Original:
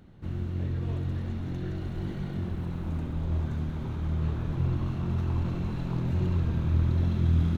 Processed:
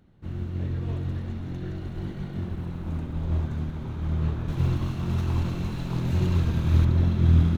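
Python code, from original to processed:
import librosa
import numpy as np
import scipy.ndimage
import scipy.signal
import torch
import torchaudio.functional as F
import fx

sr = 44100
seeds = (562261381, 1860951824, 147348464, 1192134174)

y = fx.high_shelf(x, sr, hz=3100.0, db=10.5, at=(4.48, 6.85))
y = fx.upward_expand(y, sr, threshold_db=-44.0, expansion=1.5)
y = y * librosa.db_to_amplitude(6.0)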